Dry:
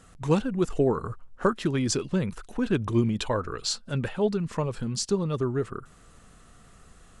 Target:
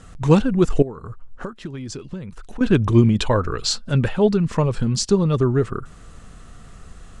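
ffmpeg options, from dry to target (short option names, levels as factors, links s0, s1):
-filter_complex "[0:a]lowpass=8800,lowshelf=f=140:g=7,asettb=1/sr,asplit=3[s0][s1][s2];[s0]atrim=end=0.824[s3];[s1]atrim=start=0.82:end=2.61,asetpts=PTS-STARTPTS,afade=t=in:d=0.004:c=qsin,afade=t=out:st=1.786:d=0.004:c=qsin,acompressor=threshold=0.0141:ratio=6[s4];[s2]atrim=start=2.606[s5];[s3][s4]acrossfade=d=0.004:c1=hsin:c2=qsin[s6];[s6][s5]acrossfade=d=0.004:c1=qsin:c2=hsin,volume=2.24"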